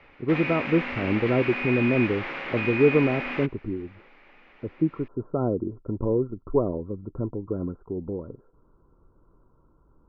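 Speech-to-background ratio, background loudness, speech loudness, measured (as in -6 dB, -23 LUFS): 3.5 dB, -30.0 LUFS, -26.5 LUFS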